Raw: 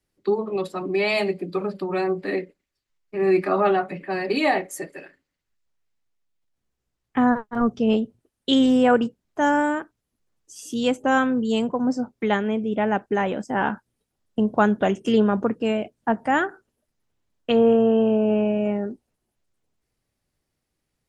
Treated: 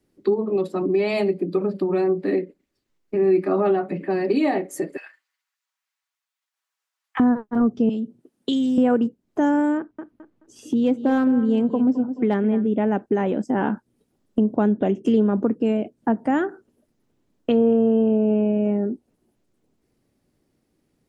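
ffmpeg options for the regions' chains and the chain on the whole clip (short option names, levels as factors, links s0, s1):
-filter_complex "[0:a]asettb=1/sr,asplit=3[s0][s1][s2];[s0]atrim=end=4.974[s3];[s1]atrim=start=4.97:end=7.2,asetpts=PTS-STARTPTS,afade=t=in:d=0.004:c=qsin,afade=t=out:st=2.226:d=0.004:c=qsin,highpass=f=1000:w=0.5412,highpass=f=1000:w=1.3066,aecho=1:1:6.2:0.45,atrim=end_sample=98343[s4];[s2]atrim=start=7.196[s5];[s3][s4]acrossfade=d=0.004:c1=hsin:c2=qsin[s6];[s6][s5]acrossfade=d=0.004:c1=qsin:c2=hsin,asettb=1/sr,asplit=3[s7][s8][s9];[s7]atrim=end=7.894[s10];[s8]atrim=start=7.89:end=8.78,asetpts=PTS-STARTPTS,afade=t=in:d=0.004:c=qsin,afade=t=out:st=0.886:d=0.004:c=qsin,lowshelf=f=110:t=q:w=1.5:g=-13,acrossover=split=130|3000[s11][s12][s13];[s12]acompressor=threshold=0.0158:ratio=2.5:attack=3.2:release=140:knee=2.83:detection=peak[s14];[s11][s14][s13]amix=inputs=3:normalize=0[s15];[s9]atrim=start=8.776[s16];[s10][s15]acrossfade=d=0.004:c1=hsin:c2=qsin[s17];[s17][s16]acrossfade=d=0.004:c1=qsin:c2=hsin,asettb=1/sr,asplit=3[s18][s19][s20];[s18]atrim=end=9.774[s21];[s19]atrim=start=9.77:end=12.67,asetpts=PTS-STARTPTS,afade=t=in:d=0.004:c=qsin,afade=t=out:st=2.896:d=0.004:c=qsin,bass=f=250:g=1,treble=f=4000:g=-13,aecho=1:1:214|428|642:0.2|0.0479|0.0115,atrim=end_sample=127890,asoftclip=type=hard:threshold=0.211[s22];[s20]atrim=start=12.666[s23];[s21][s22]acrossfade=d=0.004:c1=hsin:c2=qsin[s24];[s24][s23]acrossfade=d=0.004:c1=qsin:c2=hsin,asettb=1/sr,asplit=3[s25][s26][s27];[s25]atrim=end=14.564[s28];[s26]atrim=start=14.56:end=15.04,asetpts=PTS-STARTPTS,afade=t=in:d=0.004:c=qsin,afade=t=out:st=0.476:d=0.004:c=qsin,lowpass=4700,equalizer=f=1300:t=o:w=0.95:g=-4.5[s29];[s27]atrim=start=15.036[s30];[s28][s29]acrossfade=d=0.004:c1=hsin:c2=qsin[s31];[s31][s30]acrossfade=d=0.004:c1=qsin:c2=hsin,equalizer=f=280:w=0.62:g=13.5,acompressor=threshold=0.0355:ratio=2,volume=1.33"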